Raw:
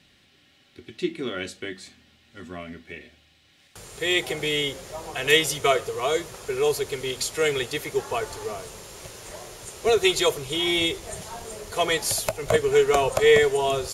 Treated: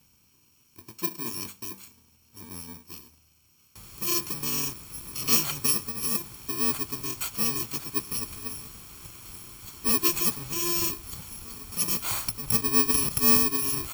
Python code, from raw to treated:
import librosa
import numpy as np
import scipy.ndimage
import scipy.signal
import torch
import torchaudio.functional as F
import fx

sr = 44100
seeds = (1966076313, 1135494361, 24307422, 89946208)

y = fx.bit_reversed(x, sr, seeds[0], block=64)
y = y + 0.34 * np.pad(y, (int(0.9 * sr / 1000.0), 0))[:len(y)]
y = y * 10.0 ** (-4.0 / 20.0)